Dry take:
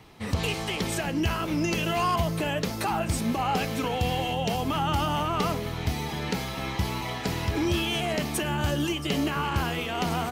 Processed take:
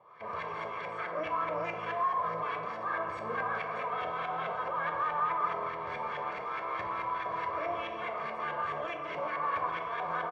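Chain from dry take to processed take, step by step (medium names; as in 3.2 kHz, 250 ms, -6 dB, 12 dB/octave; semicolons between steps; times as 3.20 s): comb filter that takes the minimum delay 0.89 ms; high-pass 430 Hz 12 dB/octave; comb 1.8 ms, depth 99%; peak limiter -24.5 dBFS, peak gain reduction 10.5 dB; LFO low-pass saw up 4.7 Hz 720–2000 Hz; FDN reverb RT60 1.5 s, low-frequency decay 1.5×, high-frequency decay 0.5×, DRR 2.5 dB; trim -5 dB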